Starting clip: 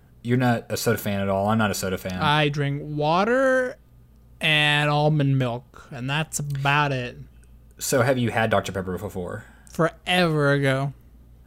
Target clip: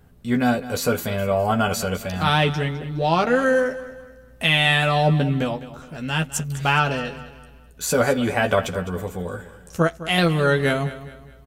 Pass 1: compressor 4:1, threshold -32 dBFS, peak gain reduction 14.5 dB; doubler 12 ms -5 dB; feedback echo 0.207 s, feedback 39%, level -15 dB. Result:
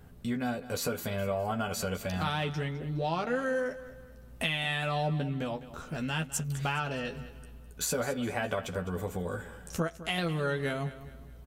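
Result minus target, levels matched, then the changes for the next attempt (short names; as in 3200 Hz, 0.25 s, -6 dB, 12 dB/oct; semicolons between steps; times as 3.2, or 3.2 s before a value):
compressor: peak gain reduction +14.5 dB
remove: compressor 4:1, threshold -32 dBFS, peak gain reduction 14.5 dB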